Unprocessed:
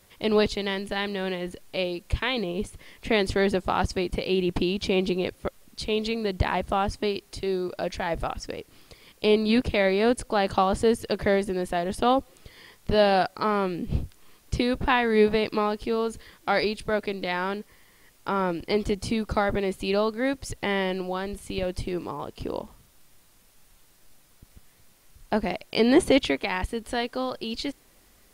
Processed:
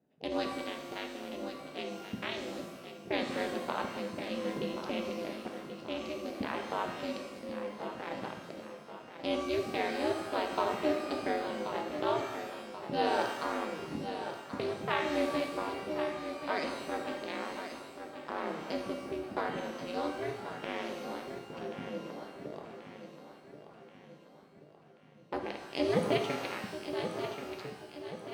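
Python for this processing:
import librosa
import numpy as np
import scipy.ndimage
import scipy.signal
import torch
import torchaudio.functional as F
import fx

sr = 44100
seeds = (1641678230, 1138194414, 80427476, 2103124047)

p1 = fx.wiener(x, sr, points=41)
p2 = p1 * np.sin(2.0 * np.pi * 150.0 * np.arange(len(p1)) / sr)
p3 = scipy.signal.sosfilt(scipy.signal.butter(2, 190.0, 'highpass', fs=sr, output='sos'), p2)
p4 = p3 + fx.echo_feedback(p3, sr, ms=1082, feedback_pct=49, wet_db=-9.5, dry=0)
p5 = fx.rev_shimmer(p4, sr, seeds[0], rt60_s=1.1, semitones=12, shimmer_db=-8, drr_db=3.5)
y = p5 * 10.0 ** (-7.0 / 20.0)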